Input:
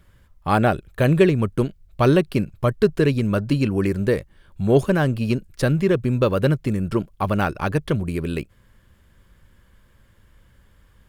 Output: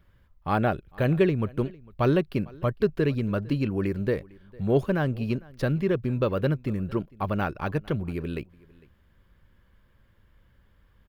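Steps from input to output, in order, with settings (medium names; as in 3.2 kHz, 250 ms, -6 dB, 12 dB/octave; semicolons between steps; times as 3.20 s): peaking EQ 8.4 kHz -12.5 dB 1.1 oct; delay 453 ms -24 dB; trim -6 dB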